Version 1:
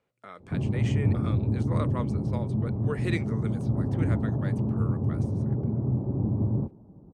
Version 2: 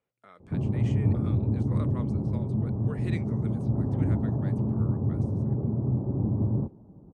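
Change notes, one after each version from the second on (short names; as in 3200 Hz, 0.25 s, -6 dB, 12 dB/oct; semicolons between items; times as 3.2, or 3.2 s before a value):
speech -8.0 dB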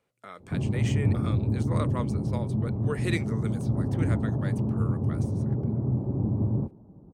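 speech +8.5 dB; master: remove LPF 3800 Hz 6 dB/oct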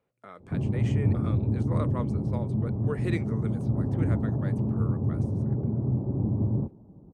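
master: add high shelf 2300 Hz -12 dB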